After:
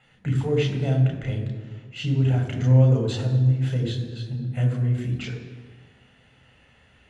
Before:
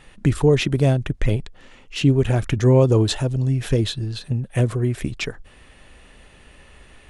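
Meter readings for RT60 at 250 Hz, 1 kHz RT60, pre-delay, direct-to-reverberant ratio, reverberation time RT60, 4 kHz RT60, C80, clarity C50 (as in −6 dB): 1.8 s, 1.4 s, 3 ms, 0.5 dB, 1.5 s, 1.0 s, 8.0 dB, 6.0 dB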